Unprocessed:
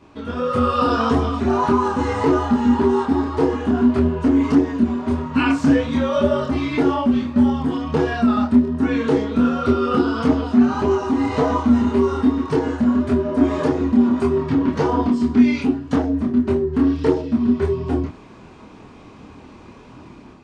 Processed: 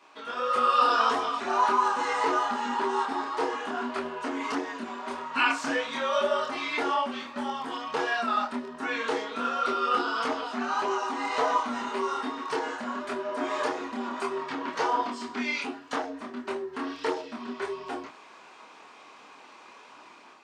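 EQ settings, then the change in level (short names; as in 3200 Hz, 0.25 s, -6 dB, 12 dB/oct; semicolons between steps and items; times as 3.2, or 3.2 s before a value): HPF 830 Hz 12 dB/oct; 0.0 dB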